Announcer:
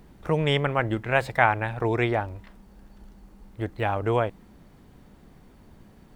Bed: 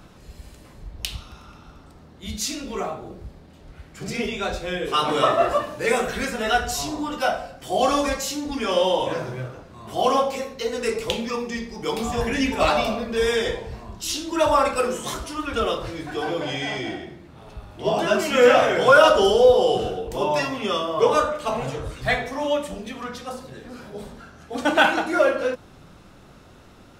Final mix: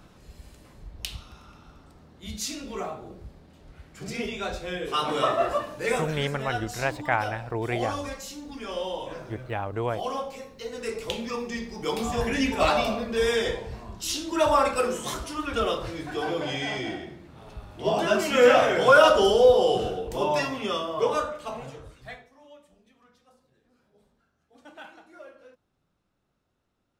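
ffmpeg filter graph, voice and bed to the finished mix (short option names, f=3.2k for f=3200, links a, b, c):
-filter_complex "[0:a]adelay=5700,volume=-5dB[a];[1:a]volume=4dB,afade=t=out:st=5.94:d=0.3:silence=0.473151,afade=t=in:st=10.51:d=1.23:silence=0.354813,afade=t=out:st=20.33:d=1.96:silence=0.0530884[b];[a][b]amix=inputs=2:normalize=0"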